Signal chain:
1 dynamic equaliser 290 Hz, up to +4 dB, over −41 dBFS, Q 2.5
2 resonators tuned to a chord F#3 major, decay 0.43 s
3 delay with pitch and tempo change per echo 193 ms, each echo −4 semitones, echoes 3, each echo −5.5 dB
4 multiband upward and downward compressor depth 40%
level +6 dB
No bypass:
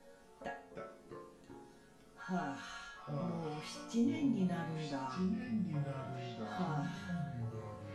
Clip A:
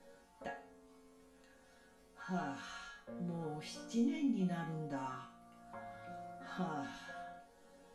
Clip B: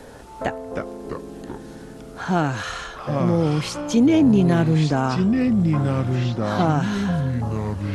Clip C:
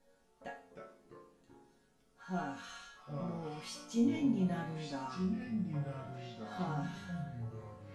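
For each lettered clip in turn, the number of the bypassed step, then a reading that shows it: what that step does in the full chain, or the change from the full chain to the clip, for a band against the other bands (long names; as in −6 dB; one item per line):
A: 3, change in crest factor +2.0 dB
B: 2, 125 Hz band +2.5 dB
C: 4, change in crest factor +1.5 dB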